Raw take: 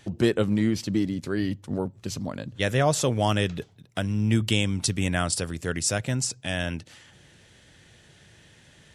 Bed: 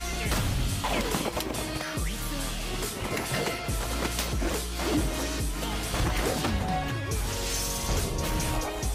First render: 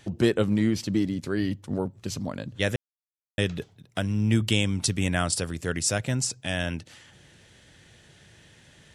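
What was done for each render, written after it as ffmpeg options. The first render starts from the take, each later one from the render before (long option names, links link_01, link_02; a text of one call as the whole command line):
ffmpeg -i in.wav -filter_complex "[0:a]asplit=3[link_01][link_02][link_03];[link_01]atrim=end=2.76,asetpts=PTS-STARTPTS,afade=type=out:start_time=2.756:duration=0.004:curve=hsin[link_04];[link_02]atrim=start=2.76:end=3.38,asetpts=PTS-STARTPTS,volume=0[link_05];[link_03]atrim=start=3.38,asetpts=PTS-STARTPTS,afade=type=in:duration=0.004:curve=hsin[link_06];[link_04][link_05][link_06]concat=n=3:v=0:a=1" out.wav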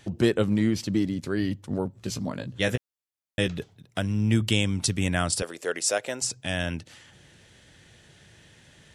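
ffmpeg -i in.wav -filter_complex "[0:a]asettb=1/sr,asplit=3[link_01][link_02][link_03];[link_01]atrim=end=1.934[link_04];[link_02]atrim=start=1.93:end=3.48,asetpts=PTS-STARTPTS,afade=type=in:duration=0.004:curve=qsin,afade=type=out:start_time=1.546:duration=0.004:curve=qsin,asplit=2[link_05][link_06];[link_06]adelay=16,volume=-6.5dB[link_07];[link_05][link_07]amix=inputs=2:normalize=0,atrim=end_sample=68355[link_08];[link_03]atrim=start=3.476[link_09];[link_04][link_08]acrossfade=duration=0.004:curve1=hsin:curve2=qsin[link_10];[link_10][link_09]acrossfade=duration=0.004:curve1=qsin:curve2=hsin,asettb=1/sr,asplit=3[link_11][link_12][link_13];[link_11]atrim=end=5.424[link_14];[link_12]atrim=start=5.42:end=6.22,asetpts=PTS-STARTPTS,afade=type=in:duration=0.004:curve=qsin,afade=type=out:start_time=0.796:duration=0.004:curve=qsin,highpass=frequency=480:width_type=q:width=1.6[link_15];[link_13]atrim=start=6.216[link_16];[link_14][link_15]acrossfade=duration=0.004:curve1=hsin:curve2=qsin[link_17];[link_17][link_16]acrossfade=duration=0.004:curve1=qsin:curve2=hsin" out.wav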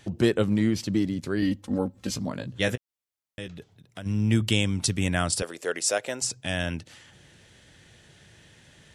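ffmpeg -i in.wav -filter_complex "[0:a]asettb=1/sr,asplit=3[link_01][link_02][link_03];[link_01]atrim=end=1.424[link_04];[link_02]atrim=start=1.42:end=2.16,asetpts=PTS-STARTPTS,afade=type=in:duration=0.004:curve=qsin,afade=type=out:start_time=0.736:duration=0.004:curve=qsin,aecho=1:1:3.8:0.83,atrim=end_sample=32634[link_05];[link_03]atrim=start=2.156[link_06];[link_04][link_05]acrossfade=duration=0.004:curve1=hsin:curve2=qsin[link_07];[link_07][link_06]acrossfade=duration=0.004:curve1=qsin:curve2=hsin,asplit=3[link_08][link_09][link_10];[link_08]afade=type=out:start_time=2.74:duration=0.02[link_11];[link_09]acompressor=threshold=-54dB:ratio=1.5:attack=3.2:release=140:knee=1:detection=peak,afade=type=in:start_time=2.74:duration=0.02,afade=type=out:start_time=4.05:duration=0.02[link_12];[link_10]afade=type=in:start_time=4.05:duration=0.02[link_13];[link_11][link_12][link_13]amix=inputs=3:normalize=0" out.wav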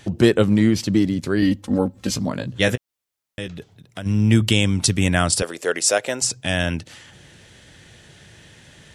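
ffmpeg -i in.wav -af "volume=7dB,alimiter=limit=-3dB:level=0:latency=1" out.wav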